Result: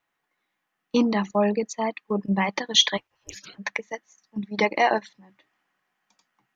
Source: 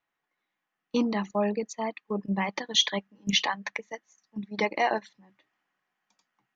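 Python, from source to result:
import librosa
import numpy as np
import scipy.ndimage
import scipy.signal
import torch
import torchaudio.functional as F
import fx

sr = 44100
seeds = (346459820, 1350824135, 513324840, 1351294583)

y = fx.spec_gate(x, sr, threshold_db=-25, keep='weak', at=(2.96, 3.58), fade=0.02)
y = y * 10.0 ** (5.0 / 20.0)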